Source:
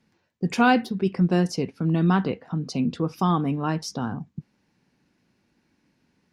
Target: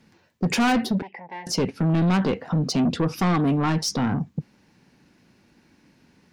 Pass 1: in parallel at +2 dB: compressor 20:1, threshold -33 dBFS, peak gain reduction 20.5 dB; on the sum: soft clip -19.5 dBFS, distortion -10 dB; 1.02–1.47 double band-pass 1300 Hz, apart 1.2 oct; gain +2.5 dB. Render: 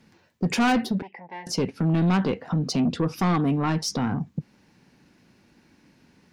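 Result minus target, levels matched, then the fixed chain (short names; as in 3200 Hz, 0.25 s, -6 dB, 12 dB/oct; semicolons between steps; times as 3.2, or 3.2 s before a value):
compressor: peak gain reduction +10.5 dB
in parallel at +2 dB: compressor 20:1, threshold -22 dBFS, peak gain reduction 10 dB; on the sum: soft clip -19.5 dBFS, distortion -8 dB; 1.02–1.47 double band-pass 1300 Hz, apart 1.2 oct; gain +2.5 dB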